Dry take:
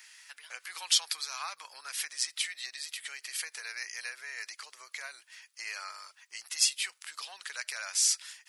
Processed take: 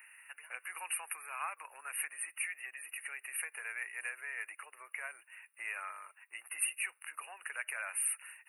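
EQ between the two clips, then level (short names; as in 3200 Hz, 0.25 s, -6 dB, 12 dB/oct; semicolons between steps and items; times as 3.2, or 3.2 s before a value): HPF 280 Hz 24 dB/oct; brick-wall FIR band-stop 2900–8500 Hz; 0.0 dB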